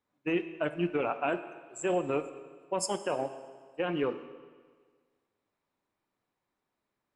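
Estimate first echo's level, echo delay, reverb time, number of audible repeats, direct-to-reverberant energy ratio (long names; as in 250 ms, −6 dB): no echo audible, no echo audible, 1.6 s, no echo audible, 10.0 dB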